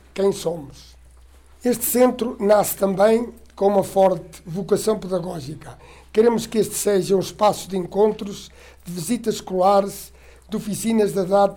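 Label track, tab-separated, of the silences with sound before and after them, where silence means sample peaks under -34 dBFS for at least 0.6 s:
0.810000	1.630000	silence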